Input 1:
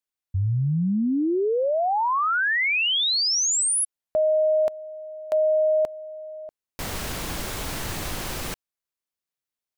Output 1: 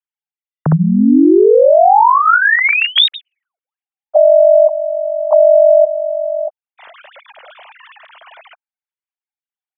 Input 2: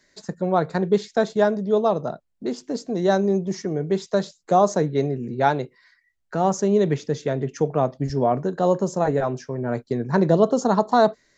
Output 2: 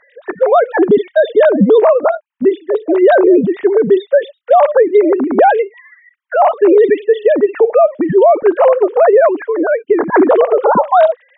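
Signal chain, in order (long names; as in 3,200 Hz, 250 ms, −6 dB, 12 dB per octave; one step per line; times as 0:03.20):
three sine waves on the formant tracks
parametric band 350 Hz −2 dB 0.25 octaves
boost into a limiter +17 dB
level −1 dB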